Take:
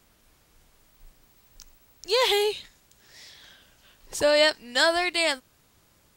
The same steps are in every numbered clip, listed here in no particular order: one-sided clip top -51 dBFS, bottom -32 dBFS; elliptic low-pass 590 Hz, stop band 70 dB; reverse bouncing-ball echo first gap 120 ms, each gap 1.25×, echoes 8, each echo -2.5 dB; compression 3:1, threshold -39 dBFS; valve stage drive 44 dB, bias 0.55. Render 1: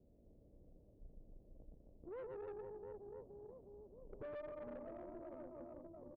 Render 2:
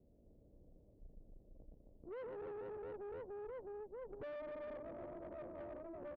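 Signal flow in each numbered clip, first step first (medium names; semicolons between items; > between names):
one-sided clip > reverse bouncing-ball echo > compression > elliptic low-pass > valve stage; reverse bouncing-ball echo > one-sided clip > elliptic low-pass > valve stage > compression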